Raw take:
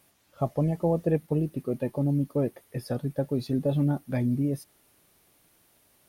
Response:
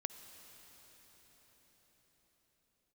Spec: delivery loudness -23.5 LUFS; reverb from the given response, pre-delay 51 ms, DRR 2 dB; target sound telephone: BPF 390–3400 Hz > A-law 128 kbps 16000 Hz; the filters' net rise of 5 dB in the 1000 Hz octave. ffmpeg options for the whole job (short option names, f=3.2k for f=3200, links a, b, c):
-filter_complex "[0:a]equalizer=f=1k:t=o:g=7.5,asplit=2[a][b];[1:a]atrim=start_sample=2205,adelay=51[c];[b][c]afir=irnorm=-1:irlink=0,volume=-0.5dB[d];[a][d]amix=inputs=2:normalize=0,highpass=390,lowpass=3.4k,volume=7.5dB" -ar 16000 -c:a pcm_alaw